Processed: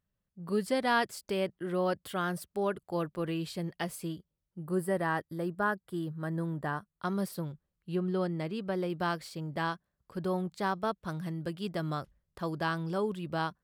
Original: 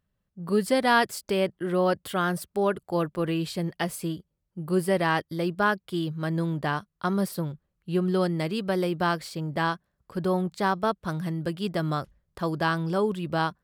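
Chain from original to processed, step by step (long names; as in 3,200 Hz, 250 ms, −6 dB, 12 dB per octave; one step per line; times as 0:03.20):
0:00.61–0:01.19: high-shelf EQ 11,000 Hz −4.5 dB
0:04.64–0:07.02: gain on a spectral selection 2,000–7,500 Hz −9 dB
0:07.95–0:08.90: high-shelf EQ 3,500 Hz −9 dB
level −6.5 dB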